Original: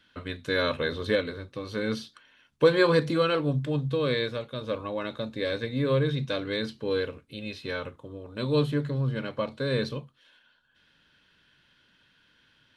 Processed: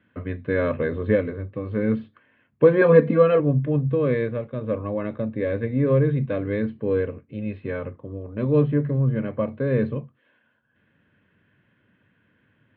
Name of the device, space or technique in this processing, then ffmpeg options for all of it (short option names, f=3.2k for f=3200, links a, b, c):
bass cabinet: -filter_complex "[0:a]lowpass=f=1.9k:p=1,highpass=88,equalizer=f=100:t=q:w=4:g=9,equalizer=f=210:t=q:w=4:g=4,equalizer=f=890:t=q:w=4:g=-7,equalizer=f=1.4k:t=q:w=4:g=-8,lowpass=f=2.2k:w=0.5412,lowpass=f=2.2k:w=1.3066,asettb=1/sr,asplit=3[a][b][c];[a]atrim=end=2.814[d];[b]atrim=start=2.81:end=3.4,asetpts=PTS-STARTPTS,afade=t=in:d=0.004:c=qsin,afade=t=out:st=0.586:d=0.004:c=qsin,aecho=1:1:4.3:0.91,atrim=end_sample=26019[e];[c]atrim=start=3.396[f];[d][e]acrossfade=d=0.004:c1=hsin:c2=qsin[g];[g][f]acrossfade=d=0.004:c1=qsin:c2=hsin,volume=5.5dB"